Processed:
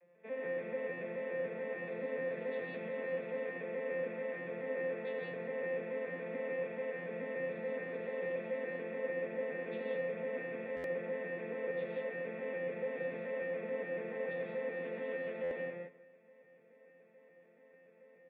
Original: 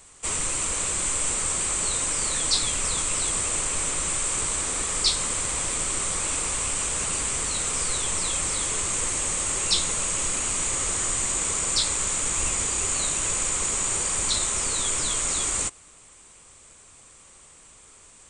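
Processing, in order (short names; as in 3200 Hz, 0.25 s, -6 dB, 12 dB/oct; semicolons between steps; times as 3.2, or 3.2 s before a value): arpeggiated vocoder major triad, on F3, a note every 0.144 s; vocal tract filter e; echo 0.191 s -19 dB; non-linear reverb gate 0.21 s rising, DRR -1 dB; stuck buffer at 10.76/15.43, samples 512, times 6; gain -2.5 dB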